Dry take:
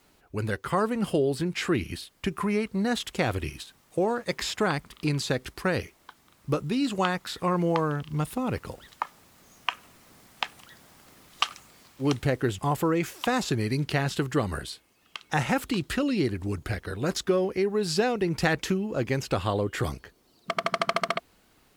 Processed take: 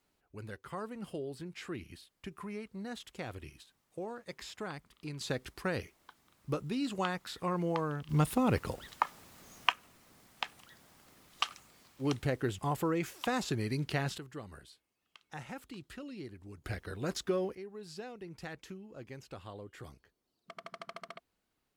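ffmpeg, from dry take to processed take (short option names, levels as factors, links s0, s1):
-af "asetnsamples=n=441:p=0,asendcmd='5.21 volume volume -8dB;8.09 volume volume 0.5dB;9.72 volume volume -7dB;14.18 volume volume -19dB;16.64 volume volume -8dB;17.55 volume volume -20dB',volume=0.168"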